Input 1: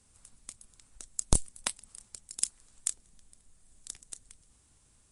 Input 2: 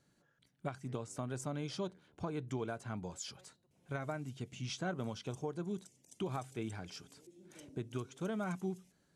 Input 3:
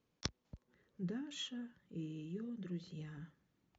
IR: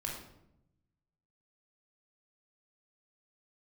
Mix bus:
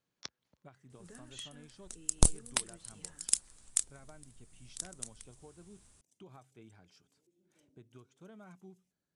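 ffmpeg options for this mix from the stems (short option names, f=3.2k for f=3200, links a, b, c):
-filter_complex "[0:a]adelay=900,volume=1.5dB[a];[1:a]volume=-15.5dB[b];[2:a]highpass=f=840:p=1,volume=-2.5dB,asplit=2[c][d];[d]apad=whole_len=265066[e];[a][e]sidechaincompress=threshold=-52dB:ratio=8:attack=8.8:release=794[f];[f][b][c]amix=inputs=3:normalize=0"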